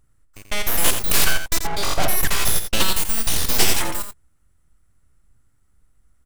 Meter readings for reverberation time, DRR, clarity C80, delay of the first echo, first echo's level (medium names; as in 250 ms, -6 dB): no reverb, no reverb, no reverb, 85 ms, -8.5 dB